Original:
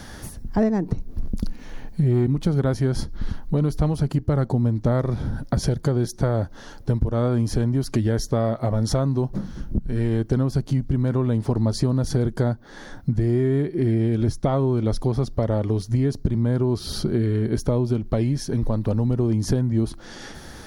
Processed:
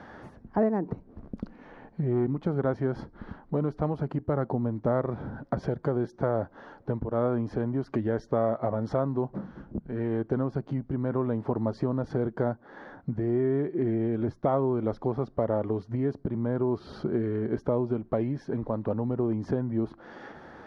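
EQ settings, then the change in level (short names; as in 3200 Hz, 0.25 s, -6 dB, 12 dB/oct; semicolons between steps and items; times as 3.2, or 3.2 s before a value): HPF 480 Hz 6 dB/oct; LPF 1300 Hz 12 dB/oct; +1.0 dB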